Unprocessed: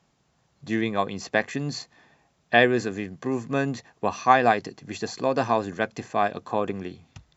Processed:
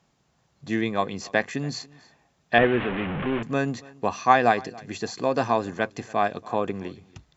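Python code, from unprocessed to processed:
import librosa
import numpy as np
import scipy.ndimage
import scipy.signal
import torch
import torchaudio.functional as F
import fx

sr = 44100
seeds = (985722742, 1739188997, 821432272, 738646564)

p1 = fx.delta_mod(x, sr, bps=16000, step_db=-23.0, at=(2.58, 3.43))
y = p1 + fx.echo_single(p1, sr, ms=282, db=-23.0, dry=0)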